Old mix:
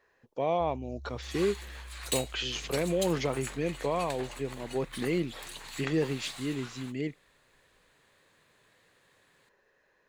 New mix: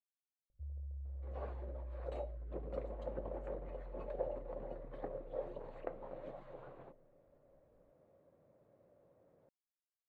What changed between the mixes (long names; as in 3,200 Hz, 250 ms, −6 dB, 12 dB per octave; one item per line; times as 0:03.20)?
speech: muted
master: add low-pass with resonance 550 Hz, resonance Q 5.7